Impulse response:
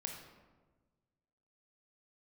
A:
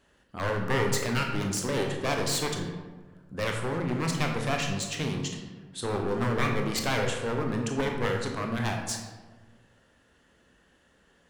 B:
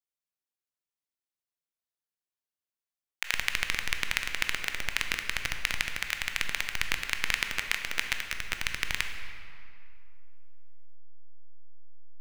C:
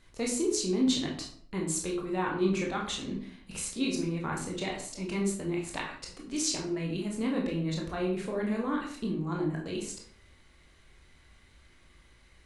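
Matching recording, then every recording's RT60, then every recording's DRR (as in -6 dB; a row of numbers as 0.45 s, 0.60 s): A; 1.3 s, 2.5 s, 0.60 s; 1.5 dB, 5.0 dB, -1.5 dB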